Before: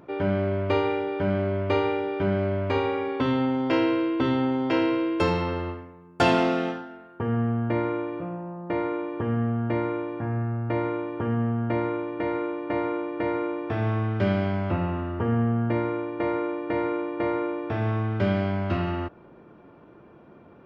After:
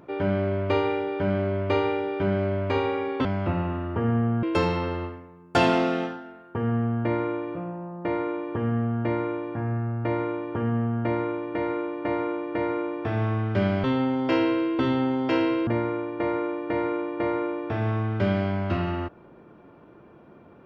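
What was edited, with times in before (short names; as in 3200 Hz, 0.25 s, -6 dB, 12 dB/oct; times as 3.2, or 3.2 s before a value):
3.25–5.08 swap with 14.49–15.67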